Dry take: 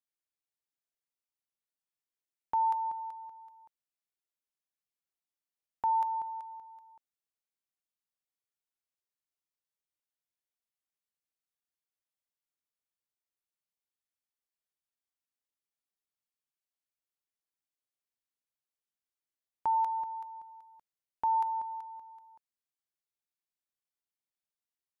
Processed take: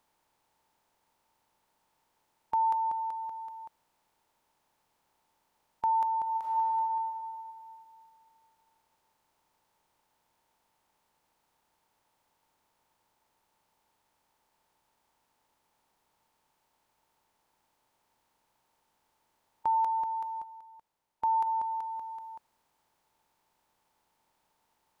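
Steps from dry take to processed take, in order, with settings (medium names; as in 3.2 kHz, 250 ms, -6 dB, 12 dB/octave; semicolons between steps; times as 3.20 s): spectral levelling over time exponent 0.6; 6.22–6.75 s: reverb throw, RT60 2.5 s, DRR -6 dB; 20.43–21.47 s: upward expansion 1.5:1, over -44 dBFS; trim +1 dB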